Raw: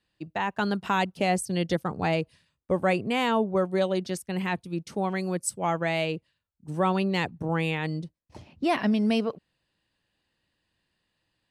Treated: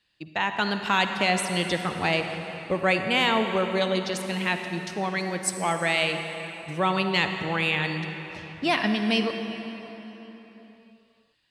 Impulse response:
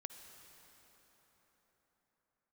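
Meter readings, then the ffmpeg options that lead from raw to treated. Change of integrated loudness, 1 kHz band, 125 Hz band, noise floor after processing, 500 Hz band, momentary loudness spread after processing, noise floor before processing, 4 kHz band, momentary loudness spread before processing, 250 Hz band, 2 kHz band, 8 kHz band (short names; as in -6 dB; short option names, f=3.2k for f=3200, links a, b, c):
+2.0 dB, +2.0 dB, -1.5 dB, -63 dBFS, 0.0 dB, 12 LU, -79 dBFS, +8.5 dB, 8 LU, -1.0 dB, +7.0 dB, +3.0 dB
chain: -filter_complex "[0:a]equalizer=f=3.3k:w=0.47:g=10.5[a];[1:a]atrim=start_sample=2205,asetrate=52920,aresample=44100[b];[a][b]afir=irnorm=-1:irlink=0,volume=4.5dB"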